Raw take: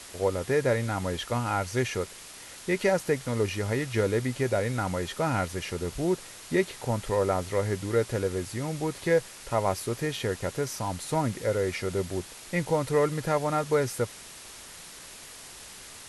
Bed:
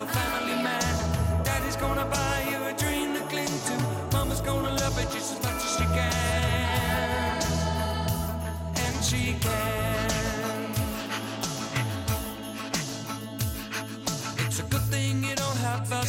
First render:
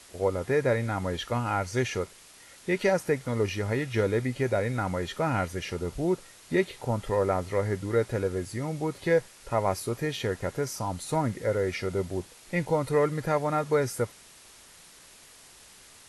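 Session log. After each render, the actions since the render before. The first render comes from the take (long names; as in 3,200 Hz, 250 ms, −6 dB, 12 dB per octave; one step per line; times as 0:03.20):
noise reduction from a noise print 7 dB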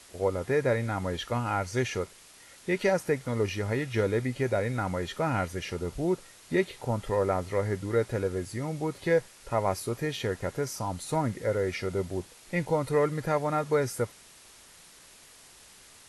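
level −1 dB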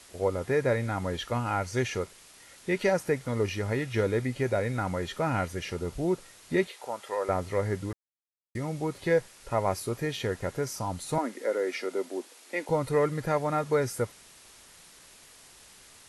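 0:06.67–0:07.29: high-pass filter 570 Hz
0:07.93–0:08.55: silence
0:11.18–0:12.69: Butterworth high-pass 240 Hz 48 dB per octave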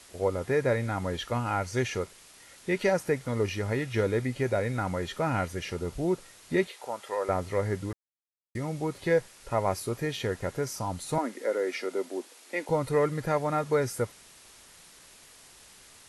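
no processing that can be heard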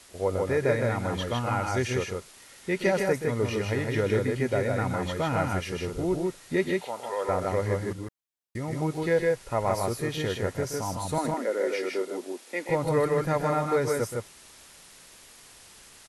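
loudspeakers that aren't time-aligned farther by 43 metres −10 dB, 54 metres −3 dB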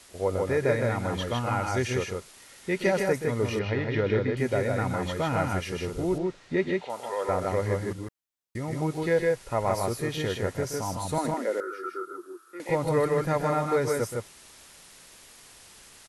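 0:03.59–0:04.37: low-pass filter 4,400 Hz 24 dB per octave
0:06.18–0:06.90: high-frequency loss of the air 120 metres
0:11.60–0:12.60: drawn EQ curve 130 Hz 0 dB, 230 Hz −27 dB, 340 Hz −2 dB, 640 Hz −26 dB, 930 Hz −17 dB, 1,300 Hz +13 dB, 2,000 Hz −21 dB, 2,900 Hz −18 dB, 7,600 Hz −15 dB, 12,000 Hz −6 dB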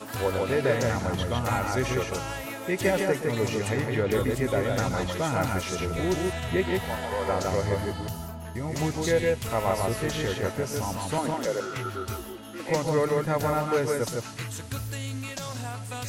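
mix in bed −7 dB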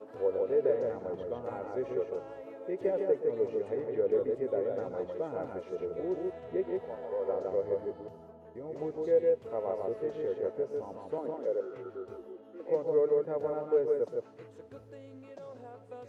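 resonant band-pass 460 Hz, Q 3.5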